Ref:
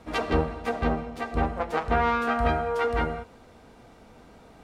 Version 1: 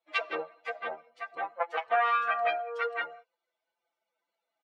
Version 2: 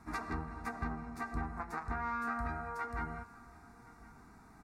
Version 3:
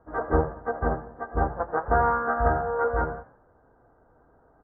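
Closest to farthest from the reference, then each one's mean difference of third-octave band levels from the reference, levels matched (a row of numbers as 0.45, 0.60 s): 2, 3, 1; 5.0, 9.0, 14.0 dB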